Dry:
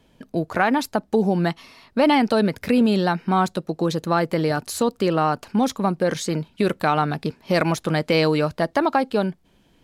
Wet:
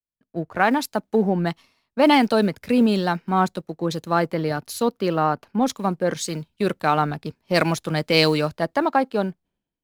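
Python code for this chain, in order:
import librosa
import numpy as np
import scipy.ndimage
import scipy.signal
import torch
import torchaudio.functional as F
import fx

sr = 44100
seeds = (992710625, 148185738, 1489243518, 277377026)

y = fx.law_mismatch(x, sr, coded='A')
y = fx.peak_eq(y, sr, hz=7900.0, db=-7.5, octaves=0.54, at=(4.32, 5.61))
y = fx.band_widen(y, sr, depth_pct=100)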